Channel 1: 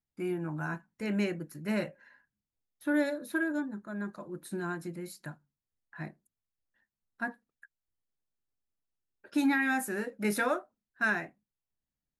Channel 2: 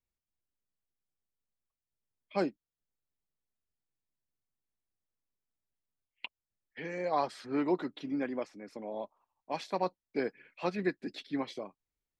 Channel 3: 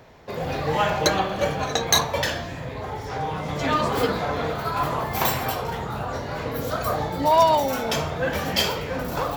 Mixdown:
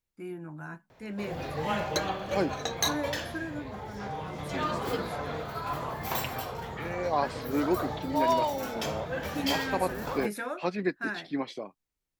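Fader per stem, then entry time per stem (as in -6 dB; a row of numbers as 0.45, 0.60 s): -6.0, +2.5, -9.0 dB; 0.00, 0.00, 0.90 s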